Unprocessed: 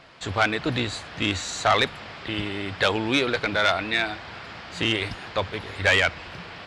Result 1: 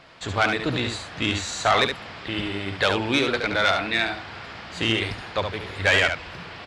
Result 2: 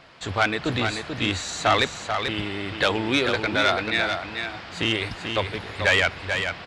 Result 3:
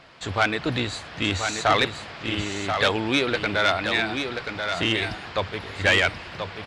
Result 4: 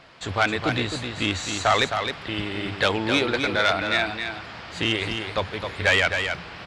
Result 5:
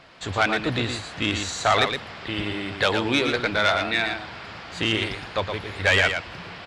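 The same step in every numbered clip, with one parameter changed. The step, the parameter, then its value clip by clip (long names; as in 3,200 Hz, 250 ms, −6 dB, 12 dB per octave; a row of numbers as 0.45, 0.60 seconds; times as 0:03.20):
single-tap delay, delay time: 71, 438, 1,033, 263, 116 milliseconds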